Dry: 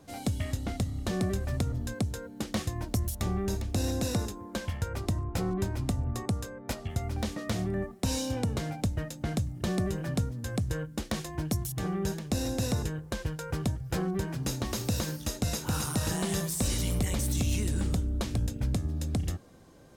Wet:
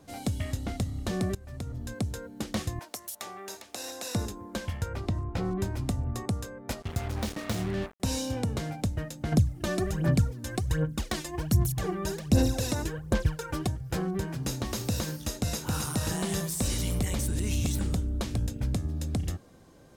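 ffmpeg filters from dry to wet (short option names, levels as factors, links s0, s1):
-filter_complex "[0:a]asettb=1/sr,asplit=3[s0][s1][s2];[s0]atrim=end=2.794[s3];[s1]atrim=start=2.79:end=4.15,asetpts=PTS-STARTPTS,afade=t=in:d=0.004:c=qsin,afade=t=out:st=1.356:d=0.004:c=qsin,highpass=680[s4];[s2]atrim=start=4.146[s5];[s3][s4]acrossfade=d=0.004:c1=hsin:c2=qsin[s6];[s6][s5]acrossfade=d=0.004:c1=qsin:c2=hsin,asettb=1/sr,asplit=3[s7][s8][s9];[s7]atrim=end=4.864[s10];[s8]atrim=start=4.86:end=5.45,asetpts=PTS-STARTPTS,afade=t=in:d=0.004:c=qsin,afade=t=out:st=0.586:d=0.004:c=qsin,acrossover=split=4900[s11][s12];[s12]acompressor=threshold=0.00141:ratio=4:attack=1:release=60[s13];[s11][s13]amix=inputs=2:normalize=0[s14];[s9]atrim=start=5.446[s15];[s10][s14]acrossfade=d=0.004:c1=hsin:c2=qsin[s16];[s16][s15]acrossfade=d=0.004:c1=qsin:c2=hsin,asettb=1/sr,asplit=3[s17][s18][s19];[s17]atrim=end=6.824[s20];[s18]atrim=start=6.82:end=8,asetpts=PTS-STARTPTS,afade=t=in:d=0.004:c=qsin,afade=t=out:st=1.176:d=0.004:c=qsin,acrusher=bits=5:mix=0:aa=0.5[s21];[s19]atrim=start=7.996[s22];[s20][s21]acrossfade=d=0.004:c1=hsin:c2=qsin[s23];[s23][s22]acrossfade=d=0.004:c1=qsin:c2=hsin,asettb=1/sr,asplit=3[s24][s25][s26];[s24]atrim=end=9.324[s27];[s25]atrim=start=9.32:end=13.67,asetpts=PTS-STARTPTS,afade=t=in:d=0.004:c=qsin,afade=t=out:st=4.346:d=0.004:c=qsin,aphaser=in_gain=1:out_gain=1:delay=3.4:decay=0.68:speed=1.3:type=sinusoidal[s28];[s26]atrim=start=13.666[s29];[s27][s28]acrossfade=d=0.004:c1=hsin:c2=qsin[s30];[s30][s29]acrossfade=d=0.004:c1=qsin:c2=hsin,asplit=4[s31][s32][s33][s34];[s31]atrim=end=1.35,asetpts=PTS-STARTPTS,afade=t=out:st=1.346:d=0.004:c=hsin:silence=0.105925[s35];[s32]atrim=start=1.35:end=17.282,asetpts=PTS-STARTPTS,afade=t=in:d=0.74:silence=0.105925[s36];[s33]atrim=start=17.278:end=17.792,asetpts=PTS-STARTPTS,areverse[s37];[s34]atrim=start=17.788[s38];[s35][s36]concat=n=2:v=0:a=1[s39];[s39][s37]acrossfade=d=0.004:c1=hsin:c2=hsin[s40];[s40][s38]acrossfade=d=0.004:c1=hsin:c2=hsin"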